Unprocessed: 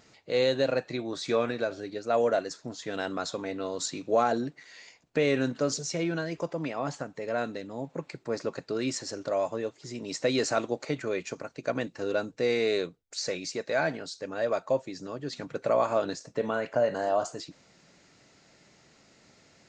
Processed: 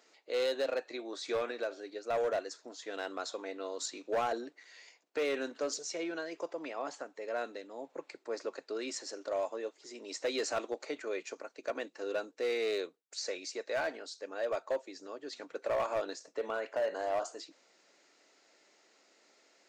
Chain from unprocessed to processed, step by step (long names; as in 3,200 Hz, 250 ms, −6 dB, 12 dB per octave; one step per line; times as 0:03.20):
high-pass filter 320 Hz 24 dB per octave
gain into a clipping stage and back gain 21.5 dB
level −5.5 dB